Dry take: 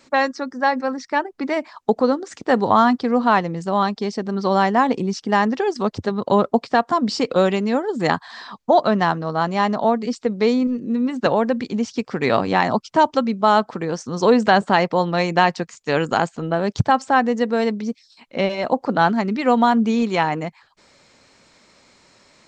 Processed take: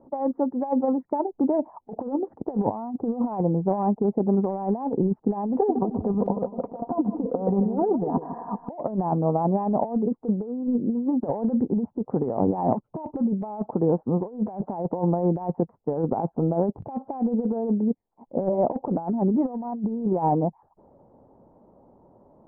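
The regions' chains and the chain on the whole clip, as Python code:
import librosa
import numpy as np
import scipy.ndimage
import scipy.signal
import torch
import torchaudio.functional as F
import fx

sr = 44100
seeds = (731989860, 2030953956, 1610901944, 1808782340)

y = fx.chain(x, sr, fx.comb(ms=4.2, depth=0.57),
    fx.over_compress(threshold_db=-23.0, ratio=-0.5),
    fx.echo_feedback(ms=155, feedback_pct=25, wet_db=-10.5), at=(5.53, 8.7))
y = scipy.signal.sosfilt(scipy.signal.ellip(4, 1.0, 80, 870.0, 'lowpass', fs=sr, output='sos'), y)
y = fx.over_compress(y, sr, threshold_db=-23.0, ratio=-0.5)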